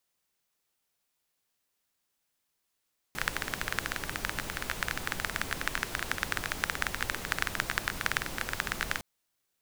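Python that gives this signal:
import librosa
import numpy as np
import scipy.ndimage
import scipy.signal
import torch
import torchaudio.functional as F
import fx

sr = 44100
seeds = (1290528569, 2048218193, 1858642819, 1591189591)

y = fx.rain(sr, seeds[0], length_s=5.86, drops_per_s=16.0, hz=1600.0, bed_db=-3.0)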